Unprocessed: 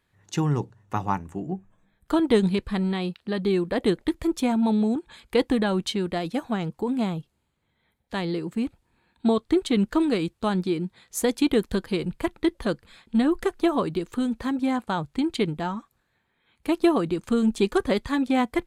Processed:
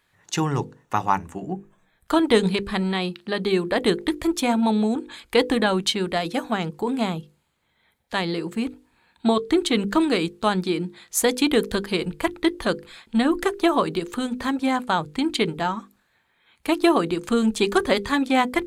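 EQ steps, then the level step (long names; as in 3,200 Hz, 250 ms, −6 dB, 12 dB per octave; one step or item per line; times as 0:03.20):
low-shelf EQ 460 Hz −8 dB
mains-hum notches 50/100/150/200/250/300/350/400/450/500 Hz
+7.5 dB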